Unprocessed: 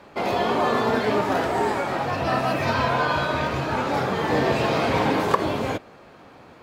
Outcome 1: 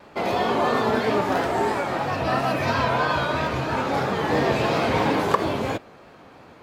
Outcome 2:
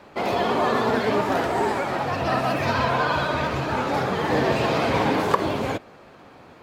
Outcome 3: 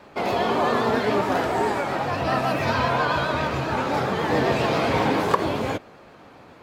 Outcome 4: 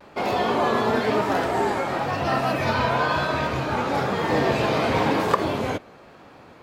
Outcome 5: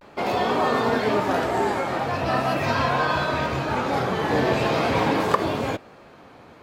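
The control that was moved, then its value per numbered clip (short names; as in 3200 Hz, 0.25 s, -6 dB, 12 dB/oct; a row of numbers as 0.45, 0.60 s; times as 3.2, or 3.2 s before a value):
vibrato, rate: 3, 16, 7.4, 1, 0.42 Hz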